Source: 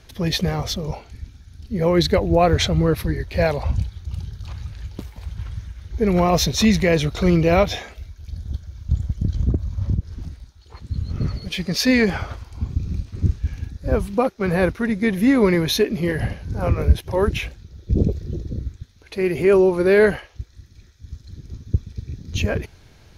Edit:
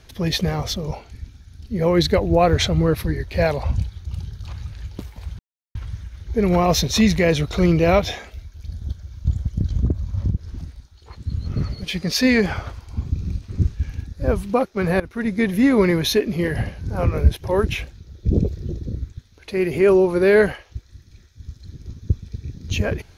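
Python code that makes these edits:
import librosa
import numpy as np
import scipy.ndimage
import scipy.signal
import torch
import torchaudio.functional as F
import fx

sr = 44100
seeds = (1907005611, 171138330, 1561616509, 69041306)

y = fx.edit(x, sr, fx.insert_silence(at_s=5.39, length_s=0.36),
    fx.fade_in_from(start_s=14.64, length_s=0.3, floor_db=-20.0), tone=tone)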